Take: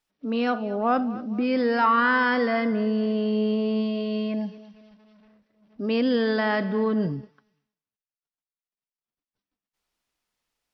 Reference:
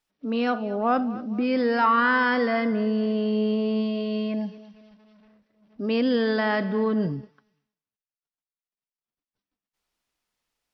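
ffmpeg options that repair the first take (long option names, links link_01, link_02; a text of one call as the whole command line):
ffmpeg -i in.wav -af anull out.wav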